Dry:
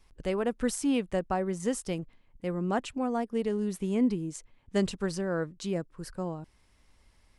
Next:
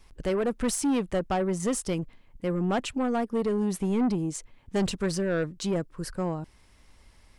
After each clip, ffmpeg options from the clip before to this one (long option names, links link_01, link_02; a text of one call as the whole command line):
ffmpeg -i in.wav -af "asoftclip=type=tanh:threshold=-27.5dB,volume=6.5dB" out.wav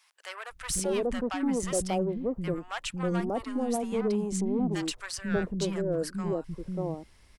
ffmpeg -i in.wav -filter_complex "[0:a]acrossover=split=230|890[link_01][link_02][link_03];[link_01]adelay=500[link_04];[link_02]adelay=590[link_05];[link_04][link_05][link_03]amix=inputs=3:normalize=0" out.wav